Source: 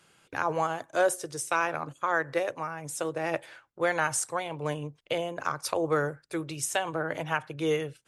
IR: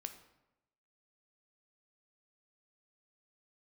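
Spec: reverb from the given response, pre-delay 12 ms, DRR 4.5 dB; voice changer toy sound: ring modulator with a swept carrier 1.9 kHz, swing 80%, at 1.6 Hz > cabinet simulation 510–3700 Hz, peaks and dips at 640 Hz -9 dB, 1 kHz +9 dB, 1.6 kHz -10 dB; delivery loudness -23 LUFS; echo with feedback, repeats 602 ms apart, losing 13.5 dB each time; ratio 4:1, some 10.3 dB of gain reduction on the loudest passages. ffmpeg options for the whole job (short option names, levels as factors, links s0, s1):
-filter_complex "[0:a]acompressor=threshold=0.0224:ratio=4,aecho=1:1:602|1204:0.211|0.0444,asplit=2[s0][s1];[1:a]atrim=start_sample=2205,adelay=12[s2];[s1][s2]afir=irnorm=-1:irlink=0,volume=0.841[s3];[s0][s3]amix=inputs=2:normalize=0,aeval=exprs='val(0)*sin(2*PI*1900*n/s+1900*0.8/1.6*sin(2*PI*1.6*n/s))':c=same,highpass=510,equalizer=f=640:t=q:w=4:g=-9,equalizer=f=1000:t=q:w=4:g=9,equalizer=f=1600:t=q:w=4:g=-10,lowpass=f=3700:w=0.5412,lowpass=f=3700:w=1.3066,volume=6.31"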